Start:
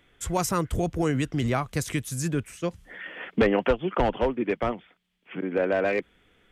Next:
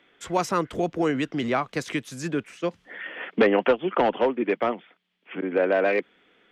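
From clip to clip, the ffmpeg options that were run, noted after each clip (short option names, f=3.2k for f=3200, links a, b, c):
-filter_complex "[0:a]acrossover=split=190 5300:gain=0.0631 1 0.141[a][b][c];[a][b][c]amix=inputs=3:normalize=0,volume=3dB"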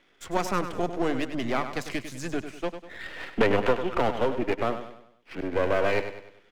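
-filter_complex "[0:a]aeval=exprs='if(lt(val(0),0),0.251*val(0),val(0))':c=same,asplit=2[a][b];[b]aecho=0:1:99|198|297|396|495:0.316|0.136|0.0585|0.0251|0.0108[c];[a][c]amix=inputs=2:normalize=0"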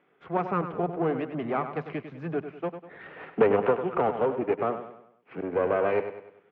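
-af "highpass=110,equalizer=f=160:t=q:w=4:g=10,equalizer=f=430:t=q:w=4:g=8,equalizer=f=770:t=q:w=4:g=5,equalizer=f=1.2k:t=q:w=4:g=4,equalizer=f=1.9k:t=q:w=4:g=-4,lowpass=f=2.4k:w=0.5412,lowpass=f=2.4k:w=1.3066,volume=-3.5dB"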